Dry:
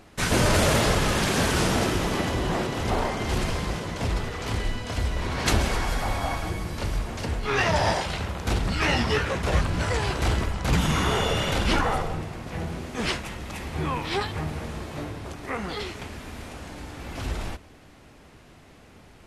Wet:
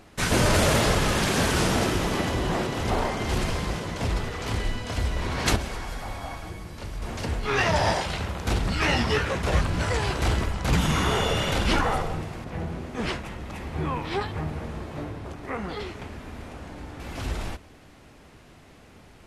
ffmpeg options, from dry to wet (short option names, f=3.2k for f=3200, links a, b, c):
-filter_complex "[0:a]asettb=1/sr,asplit=3[a][b][c];[a]atrim=end=12.444[d];[b]atrim=start=12.44:end=17,asetpts=PTS-STARTPTS,afade=t=in:d=0.004:c=qsin,afade=t=out:st=4.556:d=0.004:c=qsin,highshelf=f=2.6k:g=-8.5[e];[c]atrim=start=16.996[f];[d][e]acrossfade=d=0.004:c1=hsin:c2=qsin[g];[g][f]acrossfade=d=0.004:c1=qsin:c2=hsin,asplit=3[h][i][j];[h]atrim=end=5.562[k];[i]atrim=start=5.558:end=7.022,asetpts=PTS-STARTPTS,volume=-7.5dB[l];[j]atrim=start=7.018[m];[k][l]acrossfade=d=0.004:c1=hsin:c2=hsin[n];[n][m]acrossfade=d=0.004:c1=hsin:c2=hsin"